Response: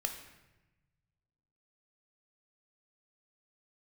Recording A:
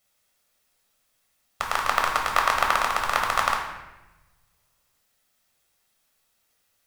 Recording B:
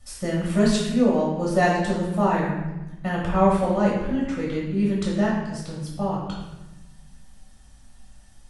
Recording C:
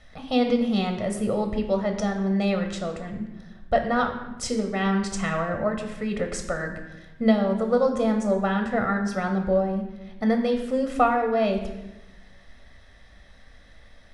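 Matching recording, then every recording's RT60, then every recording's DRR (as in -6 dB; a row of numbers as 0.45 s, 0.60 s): C; 1.0 s, 1.0 s, 1.0 s; 0.0 dB, -5.0 dB, 4.0 dB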